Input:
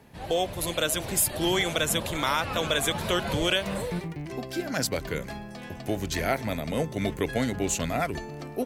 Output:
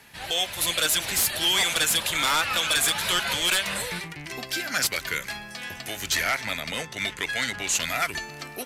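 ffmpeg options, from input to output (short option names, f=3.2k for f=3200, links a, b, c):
-filter_complex "[0:a]bandreject=f=1.1k:w=15,acrossover=split=1200[a][b];[a]alimiter=limit=-24dB:level=0:latency=1:release=290[c];[b]aeval=exprs='0.251*sin(PI/2*4.47*val(0)/0.251)':c=same[d];[c][d]amix=inputs=2:normalize=0,asettb=1/sr,asplit=3[e][f][g];[e]atrim=end=6.234[h];[f]atrim=start=6.23:end=7.75,asetpts=PTS-STARTPTS,afade=t=in:d=0.004:c=qsin,afade=t=out:st=1.516:d=0.004:c=qsin,adynamicsmooth=sensitivity=7.5:basefreq=4.7k[i];[g]atrim=start=7.746[j];[h][i]acrossfade=d=0.004:c1=hsin:c2=qsin[k];[k][j]acrossfade=d=0.004:c1=qsin:c2=hsin,volume=-5.5dB" -ar 32000 -c:a aac -b:a 96k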